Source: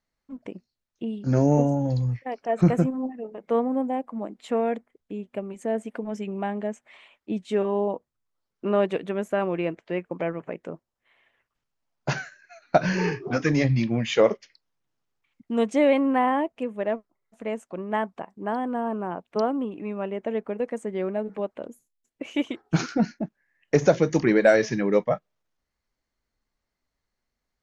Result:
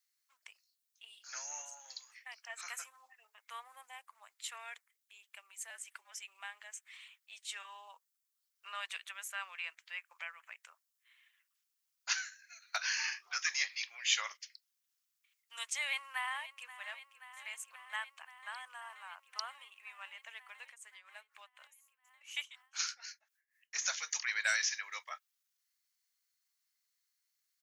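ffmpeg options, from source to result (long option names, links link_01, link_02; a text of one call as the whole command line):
ffmpeg -i in.wav -filter_complex "[0:a]asettb=1/sr,asplit=3[link_01][link_02][link_03];[link_01]atrim=end=5.704[link_04];[link_02]atrim=start=5.7:end=6.12,asetpts=PTS-STARTPTS,afade=type=in:duration=0.004:curve=qsin,afade=type=out:start_time=0.416:duration=0.004:curve=qsin,afreqshift=-58[link_05];[link_03]atrim=start=6.116[link_06];[link_04][link_05]acrossfade=duration=0.004:curve1=hsin:curve2=qsin[link_07];[link_07][link_06]acrossfade=duration=0.004:curve1=qsin:curve2=hsin,asplit=2[link_08][link_09];[link_09]afade=type=in:start_time=15.77:duration=0.01,afade=type=out:start_time=16.79:duration=0.01,aecho=0:1:530|1060|1590|2120|2650|3180|3710|4240|4770|5300|5830|6360:0.177828|0.151154|0.128481|0.109209|0.0928273|0.0789032|0.0670677|0.0570076|0.0484564|0.041188|0.0350098|0.0297583[link_10];[link_08][link_10]amix=inputs=2:normalize=0,asettb=1/sr,asplit=3[link_11][link_12][link_13];[link_11]atrim=end=20.664[link_14];[link_12]atrim=start=20.66:end=23.76,asetpts=PTS-STARTPTS,afade=type=in:duration=0.004:curve=qsin,afade=type=out:start_time=3.096:duration=0.004:curve=qsin,tremolo=f=4.1:d=0.84[link_15];[link_13]atrim=start=23.756[link_16];[link_14][link_15]acrossfade=duration=0.004:curve1=hsin:curve2=qsin[link_17];[link_17][link_16]acrossfade=duration=0.004:curve1=qsin:curve2=hsin,highpass=frequency=1100:width=0.5412,highpass=frequency=1100:width=1.3066,aderivative,volume=7dB" out.wav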